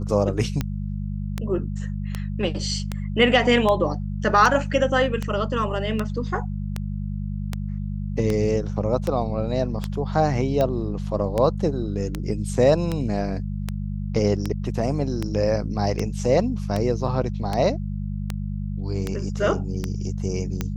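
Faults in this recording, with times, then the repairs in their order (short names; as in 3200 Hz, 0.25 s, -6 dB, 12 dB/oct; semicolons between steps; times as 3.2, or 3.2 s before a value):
hum 50 Hz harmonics 4 -28 dBFS
tick 78 rpm -11 dBFS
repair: de-click; de-hum 50 Hz, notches 4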